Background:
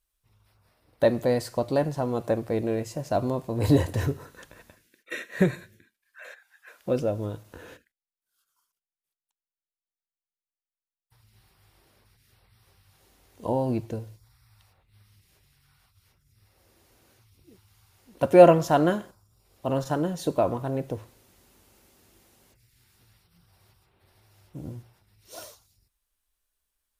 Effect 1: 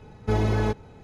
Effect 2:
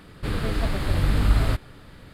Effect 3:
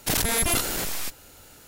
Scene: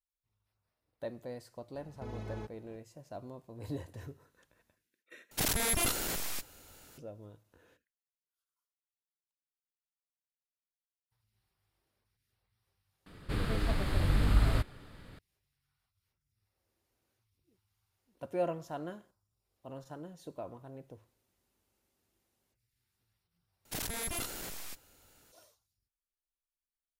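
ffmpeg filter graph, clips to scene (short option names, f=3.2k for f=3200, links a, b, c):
-filter_complex "[3:a]asplit=2[a][b];[0:a]volume=-19.5dB[c];[1:a]alimiter=limit=-23.5dB:level=0:latency=1:release=393[d];[c]asplit=4[e][f][g][h];[e]atrim=end=5.314[i];[a]atrim=end=1.67,asetpts=PTS-STARTPTS,volume=-7dB[j];[f]atrim=start=6.976:end=13.064[k];[2:a]atrim=end=2.13,asetpts=PTS-STARTPTS,volume=-6.5dB[l];[g]atrim=start=15.186:end=23.654[m];[b]atrim=end=1.67,asetpts=PTS-STARTPTS,volume=-14dB[n];[h]atrim=start=25.316[o];[d]atrim=end=1.03,asetpts=PTS-STARTPTS,volume=-11dB,afade=t=in:d=0.004:c=hsin,afade=t=out:st=1.026:d=0.004:c=hsin,adelay=1740[p];[i][j]acrossfade=d=0.004:c1=hsin:c2=hsin[q];[q][k]acrossfade=d=0.004:c1=hsin:c2=hsin[r];[r][l]acrossfade=d=0.004:c1=hsin:c2=hsin[s];[s][m]acrossfade=d=0.004:c1=hsin:c2=hsin[t];[t][n]acrossfade=d=0.004:c1=hsin:c2=hsin[u];[u][o]acrossfade=d=0.004:c1=hsin:c2=hsin[v];[v][p]amix=inputs=2:normalize=0"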